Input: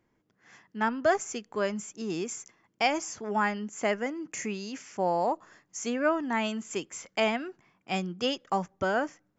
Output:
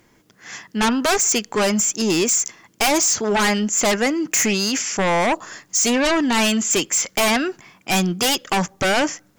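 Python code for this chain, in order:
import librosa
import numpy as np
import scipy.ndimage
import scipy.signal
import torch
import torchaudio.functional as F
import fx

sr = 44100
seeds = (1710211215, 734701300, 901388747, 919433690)

p1 = fx.high_shelf(x, sr, hz=2800.0, db=12.0)
p2 = fx.fold_sine(p1, sr, drive_db=20, ceiling_db=-6.5)
y = p1 + F.gain(torch.from_numpy(p2), -10.5).numpy()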